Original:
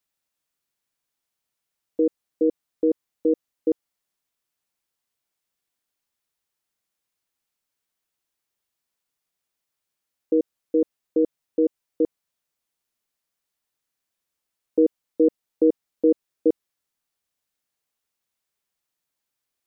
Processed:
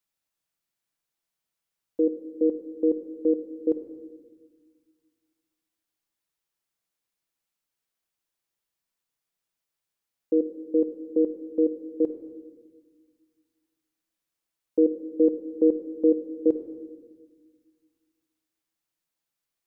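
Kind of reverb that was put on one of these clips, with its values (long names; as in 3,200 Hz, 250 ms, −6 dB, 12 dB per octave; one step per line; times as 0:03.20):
rectangular room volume 1,400 cubic metres, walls mixed, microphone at 0.71 metres
level −3.5 dB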